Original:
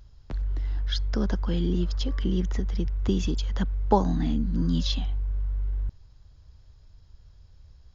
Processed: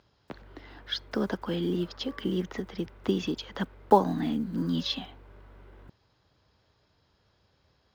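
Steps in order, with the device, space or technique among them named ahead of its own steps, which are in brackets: early digital voice recorder (band-pass 250–3900 Hz; block-companded coder 7-bit); trim +2.5 dB

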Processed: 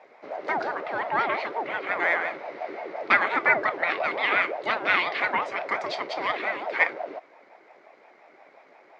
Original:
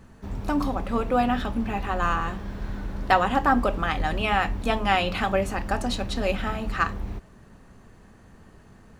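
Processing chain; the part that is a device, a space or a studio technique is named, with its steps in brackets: voice changer toy (ring modulator with a swept carrier 520 Hz, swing 35%, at 5.7 Hz; cabinet simulation 480–4800 Hz, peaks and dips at 480 Hz -4 dB, 2.1 kHz +9 dB, 3.2 kHz -4 dB); trim +2 dB

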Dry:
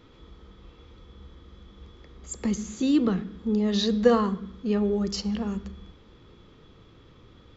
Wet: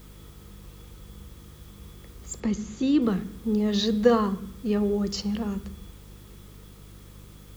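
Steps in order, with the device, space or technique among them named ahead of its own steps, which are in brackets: video cassette with head-switching buzz (mains buzz 50 Hz, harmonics 4, -48 dBFS -4 dB/octave; white noise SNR 29 dB); 2.40–3.02 s: distance through air 70 m

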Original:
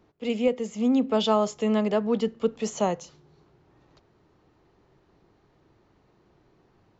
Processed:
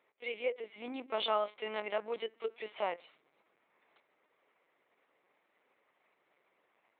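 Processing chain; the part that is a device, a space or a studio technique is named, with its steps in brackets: talking toy (LPC vocoder at 8 kHz pitch kept; high-pass 600 Hz 12 dB/octave; peaking EQ 2.2 kHz +11 dB 0.44 oct); trim -6 dB

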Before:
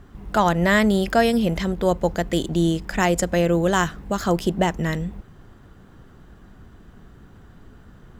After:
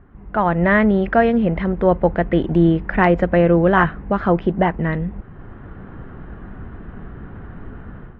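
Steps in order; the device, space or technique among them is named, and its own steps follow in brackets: action camera in a waterproof case (low-pass 2.2 kHz 24 dB/octave; level rider gain up to 14 dB; trim -2 dB; AAC 48 kbps 44.1 kHz)

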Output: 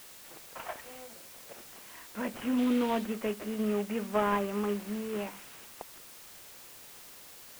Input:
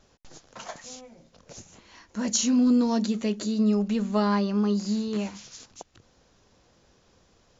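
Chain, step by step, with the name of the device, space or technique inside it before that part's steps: army field radio (band-pass 350–3100 Hz; CVSD coder 16 kbps; white noise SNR 16 dB); 2.58–3.04 s: peaking EQ 3.6 kHz +8.5 dB 0.65 oct

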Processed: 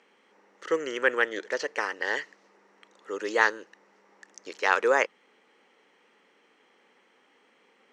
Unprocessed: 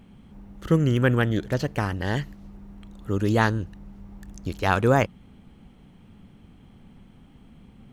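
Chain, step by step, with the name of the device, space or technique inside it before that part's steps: phone speaker on a table (cabinet simulation 440–7600 Hz, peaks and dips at 460 Hz +3 dB, 690 Hz -8 dB, 1.9 kHz +7 dB, 3.5 kHz -4 dB, 5.7 kHz +4 dB)

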